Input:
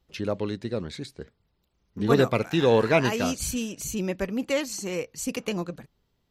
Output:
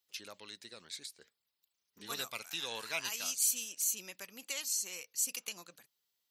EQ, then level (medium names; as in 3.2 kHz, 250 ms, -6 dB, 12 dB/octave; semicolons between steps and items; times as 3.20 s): differentiator; dynamic bell 420 Hz, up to -7 dB, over -56 dBFS, Q 0.88; dynamic bell 1.8 kHz, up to -5 dB, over -55 dBFS, Q 2.6; +2.0 dB